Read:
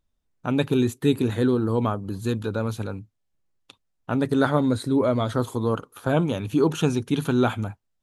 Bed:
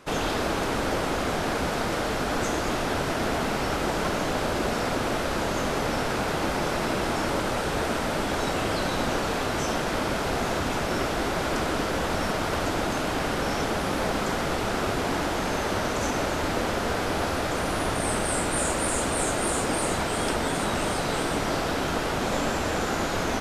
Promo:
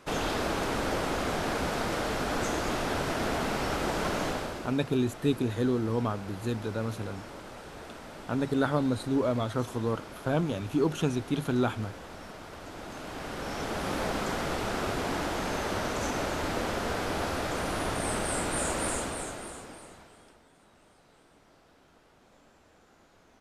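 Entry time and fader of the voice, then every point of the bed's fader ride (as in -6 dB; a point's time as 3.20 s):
4.20 s, -6.0 dB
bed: 4.27 s -3.5 dB
4.80 s -17.5 dB
12.59 s -17.5 dB
13.91 s -4.5 dB
18.90 s -4.5 dB
20.46 s -34 dB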